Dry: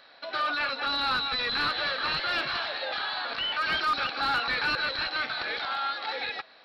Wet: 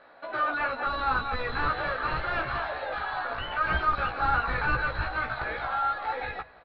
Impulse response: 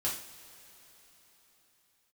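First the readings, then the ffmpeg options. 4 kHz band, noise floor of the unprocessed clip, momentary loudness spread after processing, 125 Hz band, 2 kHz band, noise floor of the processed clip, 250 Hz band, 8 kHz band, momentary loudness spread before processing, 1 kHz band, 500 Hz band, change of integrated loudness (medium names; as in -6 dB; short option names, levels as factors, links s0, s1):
-13.0 dB, -54 dBFS, 6 LU, +12.0 dB, -0.5 dB, -53 dBFS, +2.0 dB, no reading, 5 LU, +2.5 dB, +3.0 dB, -1.0 dB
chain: -filter_complex "[0:a]lowpass=1300,bandreject=f=50:t=h:w=6,bandreject=f=100:t=h:w=6,bandreject=f=150:t=h:w=6,bandreject=f=200:t=h:w=6,bandreject=f=250:t=h:w=6,asubboost=boost=8:cutoff=100,asplit=2[s0][s1];[s1]adelay=16,volume=0.708[s2];[s0][s2]amix=inputs=2:normalize=0,asplit=2[s3][s4];[s4]aecho=0:1:176:0.075[s5];[s3][s5]amix=inputs=2:normalize=0,volume=1.5"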